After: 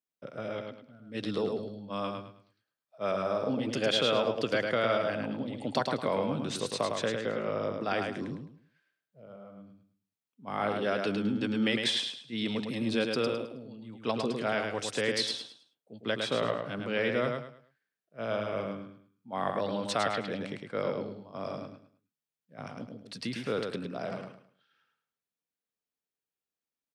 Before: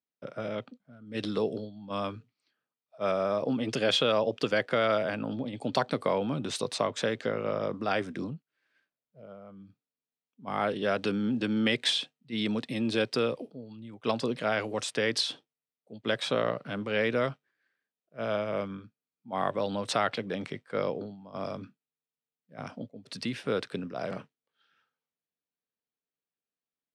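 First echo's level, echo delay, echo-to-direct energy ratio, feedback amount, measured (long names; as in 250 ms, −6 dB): −4.5 dB, 106 ms, −4.0 dB, 29%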